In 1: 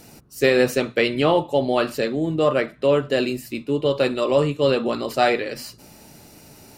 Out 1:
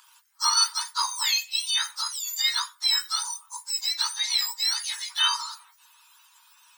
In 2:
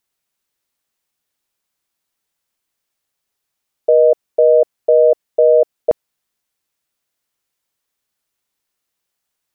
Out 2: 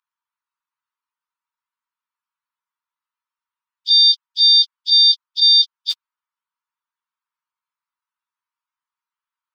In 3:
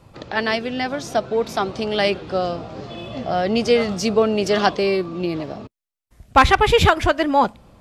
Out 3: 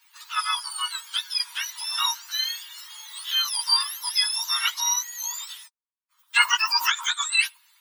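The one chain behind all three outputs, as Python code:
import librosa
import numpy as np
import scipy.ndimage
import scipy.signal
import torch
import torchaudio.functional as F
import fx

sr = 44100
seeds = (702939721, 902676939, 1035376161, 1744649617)

y = fx.octave_mirror(x, sr, pivot_hz=1500.0)
y = scipy.signal.sosfilt(scipy.signal.cheby1(6, 3, 920.0, 'highpass', fs=sr, output='sos'), y)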